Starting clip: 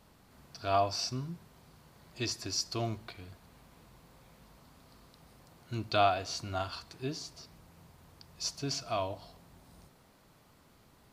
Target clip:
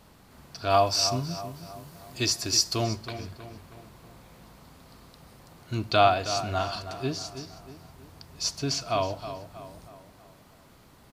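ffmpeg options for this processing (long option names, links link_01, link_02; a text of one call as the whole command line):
ffmpeg -i in.wav -filter_complex "[0:a]asettb=1/sr,asplit=3[link_01][link_02][link_03];[link_01]atrim=end=0.704[link_04];[link_02]atrim=start=0.7:end=2.84,asetpts=PTS-STARTPTS,afade=type=in:duration=0.004:curve=qsin,afade=type=out:start_time=2.136:duration=0.004:curve=qsin,highshelf=frequency=6100:gain=9.5[link_05];[link_03]atrim=start=2.836[link_06];[link_04][link_05]acrossfade=duration=0.004:curve1=hsin:curve2=qsin[link_07];[link_07][link_06]acrossfade=duration=0.004:curve1=qsin:curve2=hsin,asplit=2[link_08][link_09];[link_09]adelay=319,lowpass=frequency=2900:poles=1,volume=-11dB,asplit=2[link_10][link_11];[link_11]adelay=319,lowpass=frequency=2900:poles=1,volume=0.5,asplit=2[link_12][link_13];[link_13]adelay=319,lowpass=frequency=2900:poles=1,volume=0.5,asplit=2[link_14][link_15];[link_15]adelay=319,lowpass=frequency=2900:poles=1,volume=0.5,asplit=2[link_16][link_17];[link_17]adelay=319,lowpass=frequency=2900:poles=1,volume=0.5[link_18];[link_08][link_10][link_12][link_14][link_16][link_18]amix=inputs=6:normalize=0,volume=6.5dB" out.wav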